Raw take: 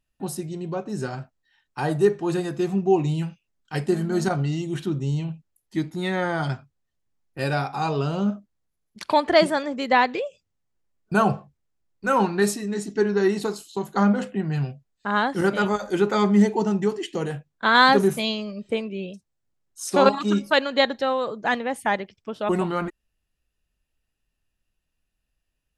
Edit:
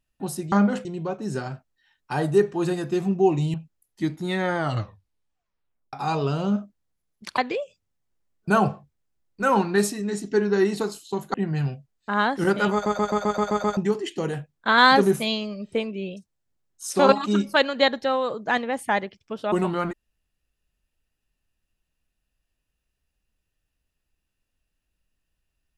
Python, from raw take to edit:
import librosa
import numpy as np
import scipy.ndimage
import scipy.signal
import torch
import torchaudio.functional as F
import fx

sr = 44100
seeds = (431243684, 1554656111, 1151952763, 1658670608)

y = fx.edit(x, sr, fx.cut(start_s=3.21, length_s=2.07),
    fx.tape_stop(start_s=6.32, length_s=1.35),
    fx.cut(start_s=9.12, length_s=0.9),
    fx.move(start_s=13.98, length_s=0.33, to_s=0.52),
    fx.stutter_over(start_s=15.7, slice_s=0.13, count=8), tone=tone)